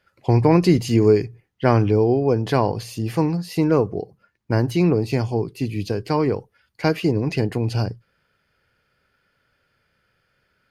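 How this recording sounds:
background noise floor −69 dBFS
spectral slope −7.0 dB per octave

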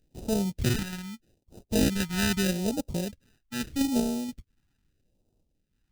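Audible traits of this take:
aliases and images of a low sample rate 1,100 Hz, jitter 0%
phaser sweep stages 2, 0.8 Hz, lowest notch 510–1,700 Hz
sample-and-hold tremolo

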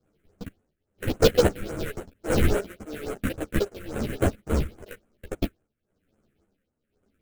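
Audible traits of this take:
aliases and images of a low sample rate 1,000 Hz, jitter 20%
phaser sweep stages 4, 3.6 Hz, lowest notch 760–5,000 Hz
tremolo triangle 1 Hz, depth 85%
a shimmering, thickened sound

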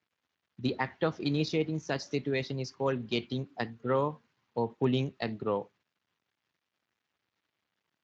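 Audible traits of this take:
a quantiser's noise floor 12 bits, dither none
Speex

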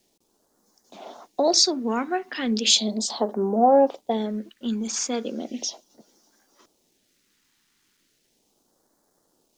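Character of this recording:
a quantiser's noise floor 12 bits, dither none
phaser sweep stages 2, 0.36 Hz, lowest notch 580–2,500 Hz

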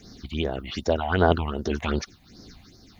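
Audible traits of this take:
tremolo triangle 1.7 Hz, depth 60%
a quantiser's noise floor 12 bits, dither none
phaser sweep stages 6, 2.6 Hz, lowest notch 370–2,800 Hz

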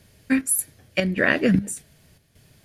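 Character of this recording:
chopped level 1.7 Hz, depth 60%, duty 70%

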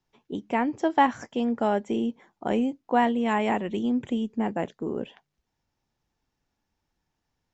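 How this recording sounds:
background noise floor −81 dBFS
spectral slope −4.5 dB per octave

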